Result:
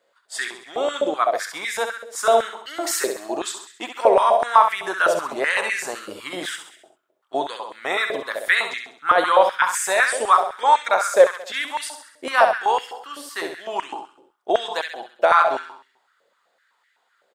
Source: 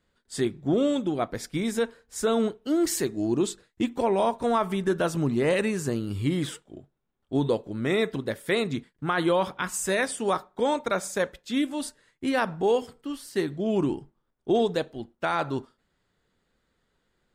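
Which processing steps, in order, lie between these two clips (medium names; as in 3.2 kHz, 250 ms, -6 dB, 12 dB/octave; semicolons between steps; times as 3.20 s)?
feedback delay 66 ms, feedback 50%, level -6.5 dB; step-sequenced high-pass 7.9 Hz 560–1900 Hz; trim +4.5 dB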